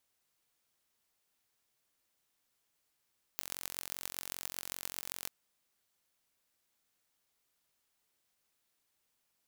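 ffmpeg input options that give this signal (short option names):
-f lavfi -i "aevalsrc='0.355*eq(mod(n,978),0)*(0.5+0.5*eq(mod(n,5868),0))':d=1.9:s=44100"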